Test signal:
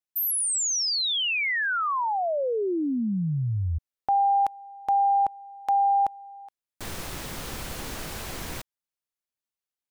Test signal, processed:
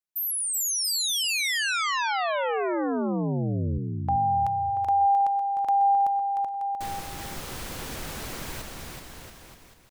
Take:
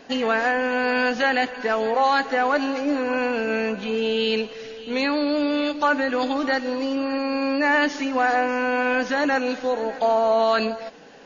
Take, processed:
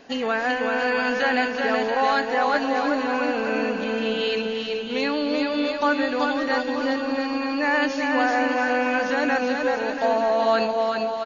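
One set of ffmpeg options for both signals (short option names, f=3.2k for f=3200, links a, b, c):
-af "aecho=1:1:380|684|927.2|1122|1277:0.631|0.398|0.251|0.158|0.1,volume=-2.5dB"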